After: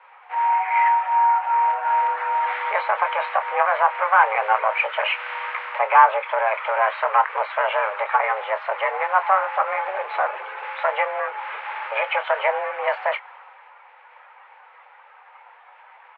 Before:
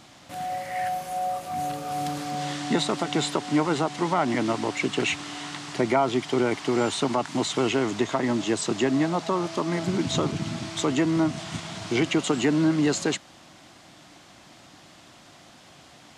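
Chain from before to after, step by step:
spectral magnitudes quantised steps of 15 dB
in parallel at +3 dB: downward compressor, threshold −31 dBFS, peak gain reduction 12.5 dB
on the sum: asymmetric clip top −21 dBFS
single-sideband voice off tune +200 Hz 470–2,200 Hz
double-tracking delay 26 ms −11 dB
multiband upward and downward expander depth 40%
level +7 dB

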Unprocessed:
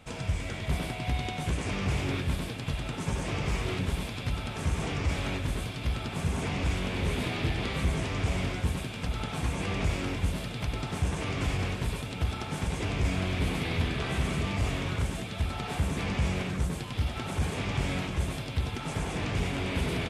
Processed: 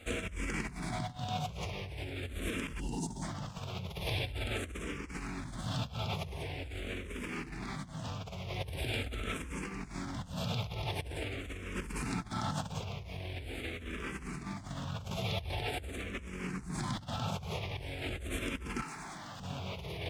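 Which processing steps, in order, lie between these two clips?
0:02.80–0:03.22: time-frequency box erased 1,000–2,700 Hz
0:18.82–0:19.40: mid-hump overdrive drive 23 dB, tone 6,300 Hz, clips at −18.5 dBFS
compressor whose output falls as the input rises −37 dBFS, ratio −1
dead-zone distortion −57 dBFS
frequency shifter mixed with the dry sound −0.44 Hz
level +1 dB

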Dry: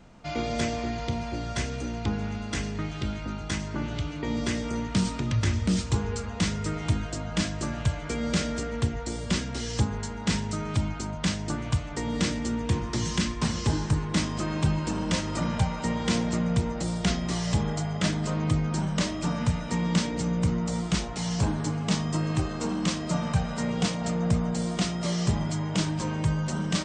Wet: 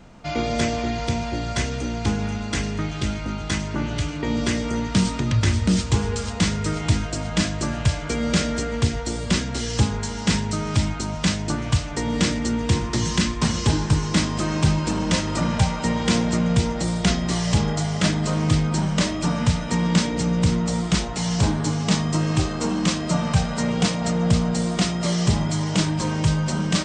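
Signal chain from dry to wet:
delay with a high-pass on its return 486 ms, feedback 63%, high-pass 2,100 Hz, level −7 dB
level +5.5 dB

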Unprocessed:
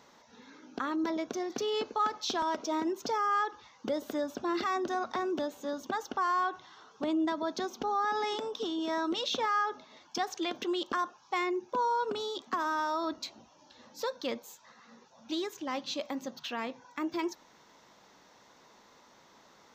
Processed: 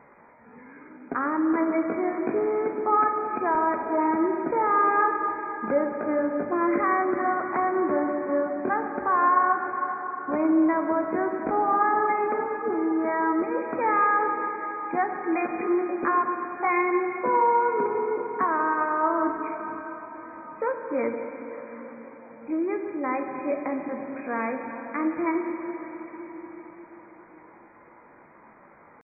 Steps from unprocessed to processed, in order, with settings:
tempo change 0.68×
linear-phase brick-wall low-pass 2,500 Hz
dense smooth reverb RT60 4.9 s, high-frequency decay 0.9×, DRR 3 dB
level +6.5 dB

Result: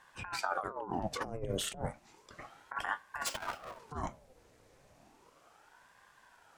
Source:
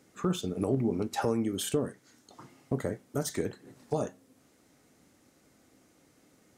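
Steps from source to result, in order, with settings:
0:03.26–0:03.79: each half-wave held at its own peak
high-shelf EQ 6,400 Hz −8.5 dB
compressor whose output falls as the input rises −33 dBFS, ratio −0.5
ring modulator whose carrier an LFO sweeps 760 Hz, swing 75%, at 0.33 Hz

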